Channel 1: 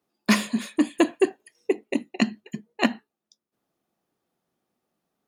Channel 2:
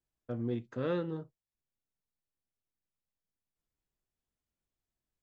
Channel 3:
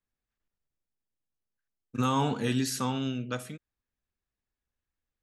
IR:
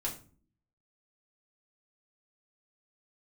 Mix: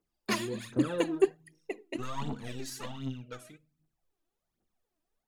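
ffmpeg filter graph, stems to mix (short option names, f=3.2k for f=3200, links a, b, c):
-filter_complex "[0:a]volume=-11.5dB,asplit=2[a][b];[b]volume=-23.5dB[c];[1:a]volume=-6dB,asplit=2[d][e];[e]volume=-8.5dB[f];[2:a]aeval=exprs='clip(val(0),-1,0.0316)':c=same,volume=-12dB,asplit=3[g][h][i];[h]volume=-16.5dB[j];[i]apad=whole_len=232654[k];[a][k]sidechaincompress=threshold=-52dB:ratio=8:attack=24:release=1030[l];[3:a]atrim=start_sample=2205[m];[c][f][j]amix=inputs=3:normalize=0[n];[n][m]afir=irnorm=-1:irlink=0[o];[l][d][g][o]amix=inputs=4:normalize=0,aphaser=in_gain=1:out_gain=1:delay=3.3:decay=0.67:speed=1.3:type=triangular"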